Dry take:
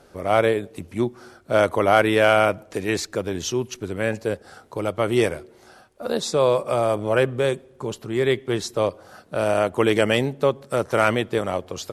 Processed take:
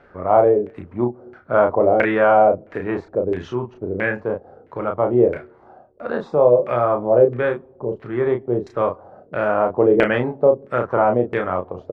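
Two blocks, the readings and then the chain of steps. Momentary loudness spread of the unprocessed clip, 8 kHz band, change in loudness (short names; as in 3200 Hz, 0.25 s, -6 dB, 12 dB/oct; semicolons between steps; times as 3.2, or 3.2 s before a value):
11 LU, under -25 dB, +3.0 dB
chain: LFO low-pass saw down 1.5 Hz 410–2100 Hz; doubler 33 ms -5 dB; gain -1 dB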